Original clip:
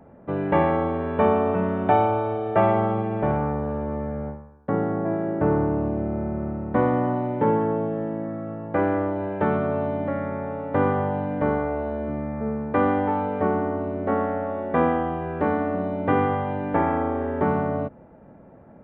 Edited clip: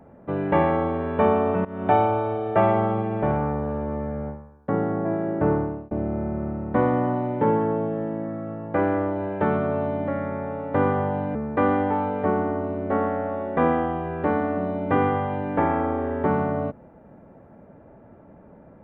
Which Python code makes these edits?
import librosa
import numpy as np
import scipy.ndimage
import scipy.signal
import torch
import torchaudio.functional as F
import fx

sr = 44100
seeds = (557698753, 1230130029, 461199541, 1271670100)

y = fx.edit(x, sr, fx.fade_in_from(start_s=1.65, length_s=0.27, floor_db=-19.5),
    fx.fade_out_span(start_s=5.5, length_s=0.41),
    fx.cut(start_s=11.35, length_s=1.17), tone=tone)